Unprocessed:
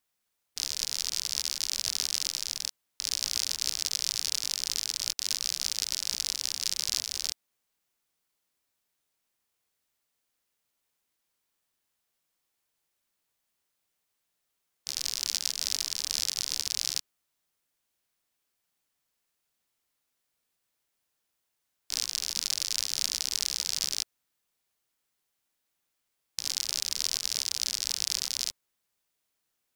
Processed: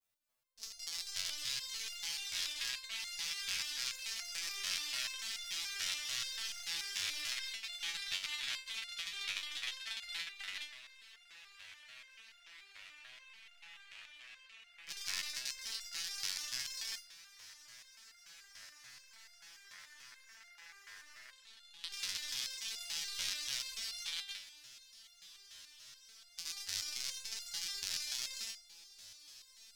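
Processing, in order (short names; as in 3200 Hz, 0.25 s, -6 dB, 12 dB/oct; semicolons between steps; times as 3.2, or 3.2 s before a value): low shelf 98 Hz +5 dB; on a send: diffused feedback echo 0.974 s, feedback 70%, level -11 dB; on the sum: echoes that change speed 0.301 s, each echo -6 st, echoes 3, each echo -6 dB; in parallel at -1 dB: limiter -16 dBFS, peak gain reduction 9.5 dB; on the sum: spring tank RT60 3.4 s, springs 33 ms, chirp 20 ms, DRR 2 dB; level quantiser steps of 15 dB; dynamic EQ 2000 Hz, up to +5 dB, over -43 dBFS, Q 0.9; stepped resonator 6.9 Hz 95–700 Hz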